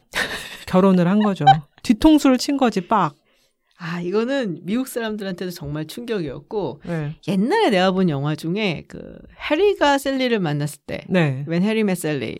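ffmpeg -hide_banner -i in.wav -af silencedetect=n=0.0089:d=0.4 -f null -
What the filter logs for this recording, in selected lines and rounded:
silence_start: 3.12
silence_end: 3.80 | silence_duration: 0.67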